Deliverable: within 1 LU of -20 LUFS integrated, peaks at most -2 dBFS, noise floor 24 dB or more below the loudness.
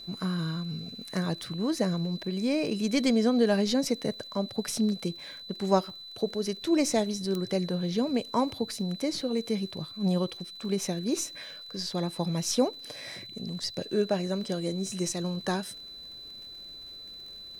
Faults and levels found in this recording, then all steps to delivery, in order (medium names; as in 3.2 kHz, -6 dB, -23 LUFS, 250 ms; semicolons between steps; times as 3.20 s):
tick rate 40 per s; steady tone 4 kHz; tone level -42 dBFS; loudness -30.0 LUFS; peak level -9.5 dBFS; loudness target -20.0 LUFS
-> de-click; band-stop 4 kHz, Q 30; trim +10 dB; peak limiter -2 dBFS